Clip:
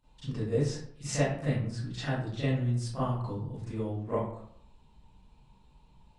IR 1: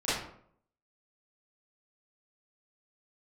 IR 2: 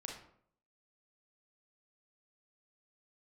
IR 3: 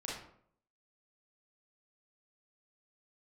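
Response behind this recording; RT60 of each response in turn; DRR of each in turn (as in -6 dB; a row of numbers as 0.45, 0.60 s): 1; 0.65, 0.65, 0.65 s; -14.0, -0.5, -5.5 dB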